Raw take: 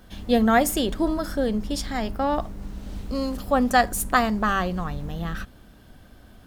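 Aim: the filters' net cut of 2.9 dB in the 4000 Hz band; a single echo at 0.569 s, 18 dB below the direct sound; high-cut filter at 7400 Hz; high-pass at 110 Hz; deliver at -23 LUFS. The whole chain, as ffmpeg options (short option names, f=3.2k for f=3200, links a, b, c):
-af "highpass=110,lowpass=7.4k,equalizer=f=4k:t=o:g=-3.5,aecho=1:1:569:0.126,volume=1.5dB"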